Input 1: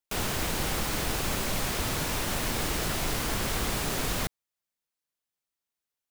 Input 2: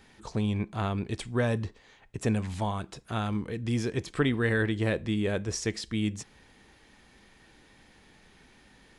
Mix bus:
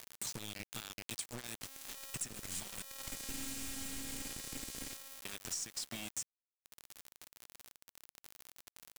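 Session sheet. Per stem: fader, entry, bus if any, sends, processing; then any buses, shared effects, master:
3.91 s -2.5 dB -> 4.38 s -10 dB, 1.50 s, no send, echo send -14.5 dB, robot voice 271 Hz; auto duck -15 dB, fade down 0.35 s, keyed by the second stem
+2.5 dB, 0.00 s, muted 2.91–5.25 s, no send, no echo send, compression 12:1, threshold -37 dBFS, peak gain reduction 17.5 dB; tilt EQ +4 dB/octave; three bands compressed up and down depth 40%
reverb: none
echo: feedback delay 338 ms, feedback 19%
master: ten-band graphic EQ 125 Hz +8 dB, 250 Hz +5 dB, 500 Hz -11 dB, 1 kHz -11 dB, 8 kHz +8 dB; bit crusher 6-bit; compression 6:1, threshold -38 dBFS, peak gain reduction 13.5 dB

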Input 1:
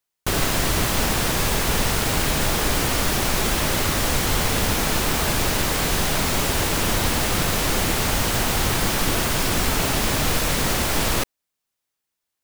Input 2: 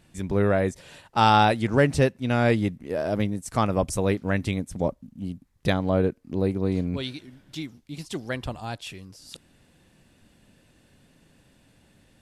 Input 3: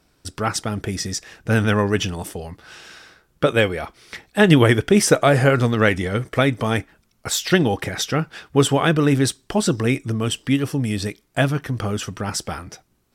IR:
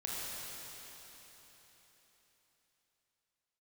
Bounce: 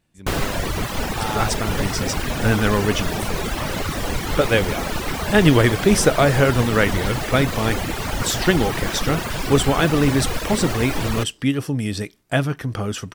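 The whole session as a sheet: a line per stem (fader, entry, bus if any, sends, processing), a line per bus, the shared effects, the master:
+1.5 dB, 0.00 s, no send, reverb removal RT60 1.8 s; treble shelf 4 kHz -8.5 dB
-10.5 dB, 0.00 s, no send, none
-1.0 dB, 0.95 s, no send, none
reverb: none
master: none

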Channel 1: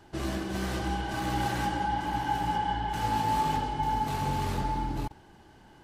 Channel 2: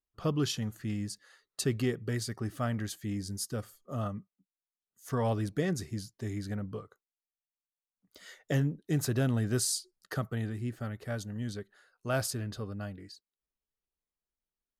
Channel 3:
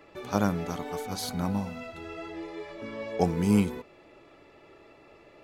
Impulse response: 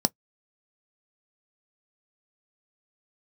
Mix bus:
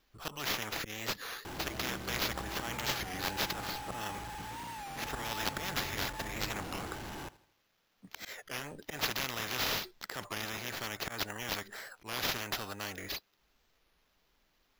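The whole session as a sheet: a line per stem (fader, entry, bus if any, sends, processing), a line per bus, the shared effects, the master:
-12.0 dB, 1.45 s, no send, echo send -19 dB, one-bit comparator; steep low-pass 4.6 kHz
+2.5 dB, 0.00 s, no send, no echo send, slow attack 256 ms; spectrum-flattening compressor 10:1
mute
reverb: none
echo: feedback delay 80 ms, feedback 45%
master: sample-and-hold 5×; warped record 33 1/3 rpm, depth 160 cents

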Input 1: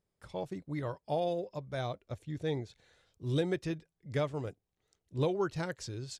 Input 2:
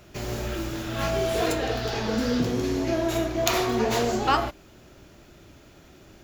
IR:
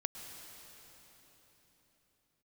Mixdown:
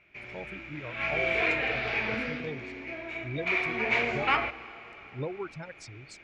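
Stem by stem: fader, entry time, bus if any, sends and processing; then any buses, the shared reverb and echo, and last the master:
-4.0 dB, 0.00 s, no send, spectral gate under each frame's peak -25 dB strong; reverb removal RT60 1.9 s
0.73 s -18.5 dB -> 1.24 s -8.5 dB -> 2.13 s -8.5 dB -> 2.52 s -18 dB -> 3.33 s -18 dB -> 3.93 s -9 dB, 0.00 s, send -8.5 dB, tilt EQ +1.5 dB/octave; wavefolder -13 dBFS; resonant low-pass 2.3 kHz, resonance Q 12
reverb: on, pre-delay 100 ms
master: none

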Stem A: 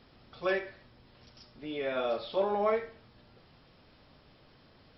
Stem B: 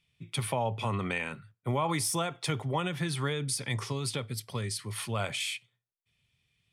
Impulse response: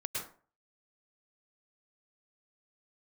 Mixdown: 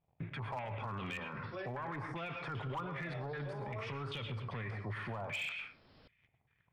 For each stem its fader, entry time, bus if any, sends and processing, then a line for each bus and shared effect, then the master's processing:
+1.5 dB, 1.10 s, no send, auto duck -11 dB, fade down 1.90 s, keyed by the second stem
0.0 dB, 0.00 s, send -8.5 dB, compression 2:1, threshold -50 dBFS, peak gain reduction 13.5 dB; waveshaping leveller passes 3; step-sequenced low-pass 5.1 Hz 770–3000 Hz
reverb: on, RT60 0.40 s, pre-delay 98 ms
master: overload inside the chain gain 22.5 dB; peak limiter -34.5 dBFS, peak gain reduction 12 dB

